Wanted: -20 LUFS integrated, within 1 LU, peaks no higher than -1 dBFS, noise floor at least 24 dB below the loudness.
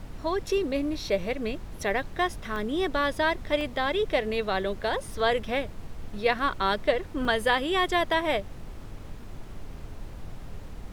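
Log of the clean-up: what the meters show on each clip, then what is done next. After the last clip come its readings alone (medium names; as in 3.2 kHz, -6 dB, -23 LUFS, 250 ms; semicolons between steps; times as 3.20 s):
dropouts 3; longest dropout 1.9 ms; noise floor -42 dBFS; noise floor target -52 dBFS; loudness -27.5 LUFS; peak level -10.5 dBFS; loudness target -20.0 LUFS
-> interpolate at 2.56/3.61/7.25 s, 1.9 ms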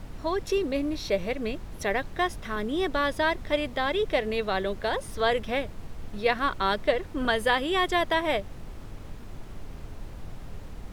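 dropouts 0; noise floor -42 dBFS; noise floor target -52 dBFS
-> noise print and reduce 10 dB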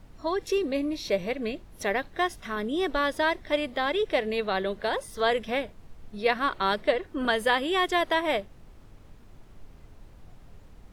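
noise floor -51 dBFS; noise floor target -52 dBFS
-> noise print and reduce 6 dB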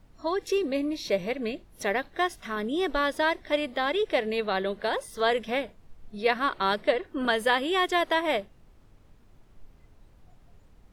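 noise floor -57 dBFS; loudness -27.5 LUFS; peak level -10.5 dBFS; loudness target -20.0 LUFS
-> trim +7.5 dB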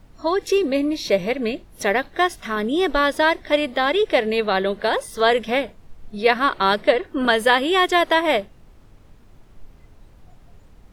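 loudness -20.0 LUFS; peak level -3.0 dBFS; noise floor -49 dBFS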